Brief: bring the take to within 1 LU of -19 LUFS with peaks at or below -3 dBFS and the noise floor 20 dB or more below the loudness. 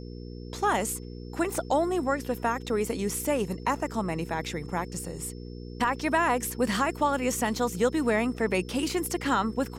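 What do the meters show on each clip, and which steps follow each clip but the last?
hum 60 Hz; highest harmonic 480 Hz; hum level -37 dBFS; steady tone 5.3 kHz; tone level -56 dBFS; loudness -28.0 LUFS; peak level -13.0 dBFS; loudness target -19.0 LUFS
-> de-hum 60 Hz, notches 8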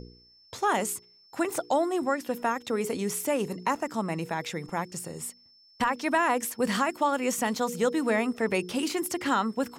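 hum not found; steady tone 5.3 kHz; tone level -56 dBFS
-> band-stop 5.3 kHz, Q 30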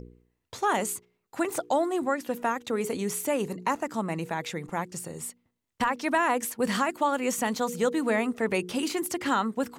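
steady tone not found; loudness -28.5 LUFS; peak level -13.5 dBFS; loudness target -19.0 LUFS
-> trim +9.5 dB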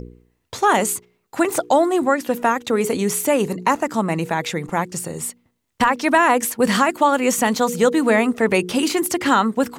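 loudness -19.0 LUFS; peak level -4.0 dBFS; noise floor -69 dBFS

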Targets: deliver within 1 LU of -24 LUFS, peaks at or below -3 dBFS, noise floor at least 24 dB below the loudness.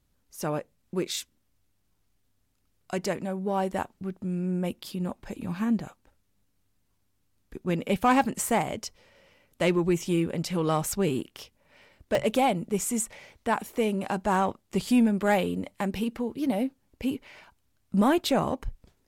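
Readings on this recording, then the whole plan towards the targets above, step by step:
dropouts 1; longest dropout 1.8 ms; loudness -28.0 LUFS; peak level -13.0 dBFS; loudness target -24.0 LUFS
-> interpolate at 12.15 s, 1.8 ms; trim +4 dB

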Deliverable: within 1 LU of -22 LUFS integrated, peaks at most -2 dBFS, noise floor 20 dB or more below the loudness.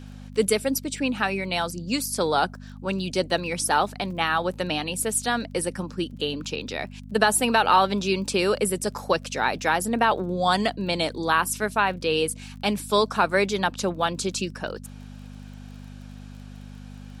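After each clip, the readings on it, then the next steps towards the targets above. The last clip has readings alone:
tick rate 30 per s; hum 50 Hz; highest harmonic 250 Hz; hum level -39 dBFS; loudness -24.5 LUFS; peak level -4.5 dBFS; loudness target -22.0 LUFS
-> de-click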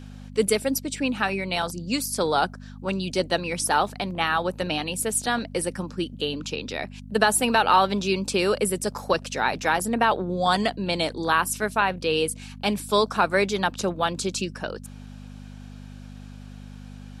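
tick rate 0 per s; hum 50 Hz; highest harmonic 250 Hz; hum level -39 dBFS
-> de-hum 50 Hz, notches 5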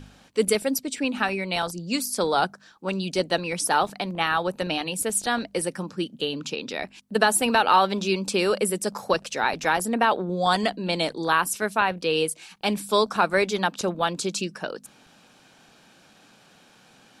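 hum not found; loudness -24.5 LUFS; peak level -5.0 dBFS; loudness target -22.0 LUFS
-> trim +2.5 dB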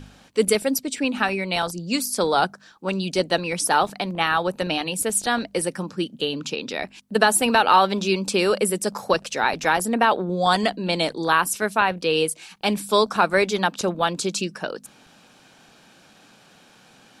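loudness -22.0 LUFS; peak level -2.5 dBFS; noise floor -53 dBFS

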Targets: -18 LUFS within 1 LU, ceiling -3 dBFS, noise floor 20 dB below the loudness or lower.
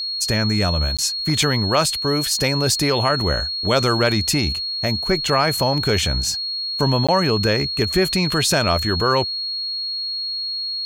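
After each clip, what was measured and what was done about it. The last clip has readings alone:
dropouts 2; longest dropout 16 ms; steady tone 4.3 kHz; tone level -23 dBFS; loudness -19.0 LUFS; peak level -5.5 dBFS; loudness target -18.0 LUFS
-> interpolate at 0.97/7.07 s, 16 ms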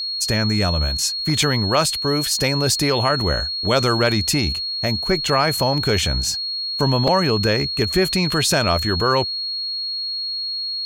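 dropouts 0; steady tone 4.3 kHz; tone level -23 dBFS
-> band-stop 4.3 kHz, Q 30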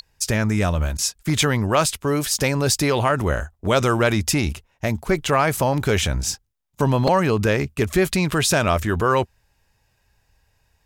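steady tone not found; loudness -20.5 LUFS; peak level -6.0 dBFS; loudness target -18.0 LUFS
-> trim +2.5 dB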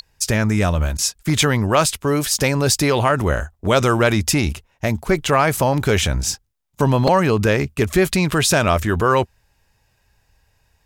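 loudness -18.0 LUFS; peak level -3.5 dBFS; noise floor -64 dBFS

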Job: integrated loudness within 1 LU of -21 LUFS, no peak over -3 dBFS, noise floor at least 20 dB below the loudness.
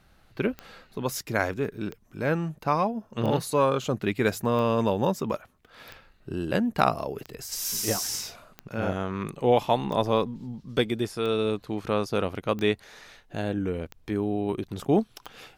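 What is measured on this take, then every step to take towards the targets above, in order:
clicks found 12; loudness -27.5 LUFS; peak level -5.5 dBFS; loudness target -21.0 LUFS
-> de-click; trim +6.5 dB; peak limiter -3 dBFS

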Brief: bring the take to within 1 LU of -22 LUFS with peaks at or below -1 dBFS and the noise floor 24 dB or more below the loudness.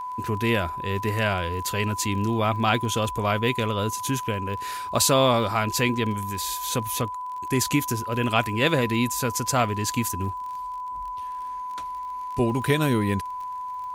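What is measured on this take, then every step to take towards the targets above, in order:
tick rate 31 per s; steady tone 1 kHz; tone level -30 dBFS; loudness -25.0 LUFS; peak level -6.0 dBFS; loudness target -22.0 LUFS
-> de-click; band-stop 1 kHz, Q 30; trim +3 dB

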